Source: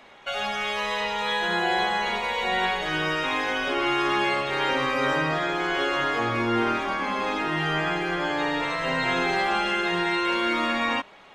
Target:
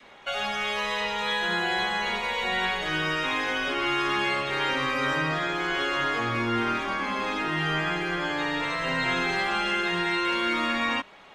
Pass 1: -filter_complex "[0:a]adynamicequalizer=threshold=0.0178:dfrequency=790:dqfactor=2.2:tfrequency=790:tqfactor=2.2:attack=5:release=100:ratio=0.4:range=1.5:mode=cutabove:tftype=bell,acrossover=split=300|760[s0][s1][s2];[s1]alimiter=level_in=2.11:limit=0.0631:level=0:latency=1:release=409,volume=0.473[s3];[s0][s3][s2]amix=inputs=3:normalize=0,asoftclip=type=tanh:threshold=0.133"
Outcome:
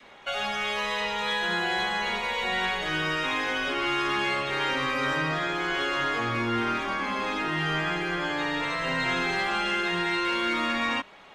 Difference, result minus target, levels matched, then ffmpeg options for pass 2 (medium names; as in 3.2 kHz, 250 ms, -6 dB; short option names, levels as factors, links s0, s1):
saturation: distortion +12 dB
-filter_complex "[0:a]adynamicequalizer=threshold=0.0178:dfrequency=790:dqfactor=2.2:tfrequency=790:tqfactor=2.2:attack=5:release=100:ratio=0.4:range=1.5:mode=cutabove:tftype=bell,acrossover=split=300|760[s0][s1][s2];[s1]alimiter=level_in=2.11:limit=0.0631:level=0:latency=1:release=409,volume=0.473[s3];[s0][s3][s2]amix=inputs=3:normalize=0,asoftclip=type=tanh:threshold=0.299"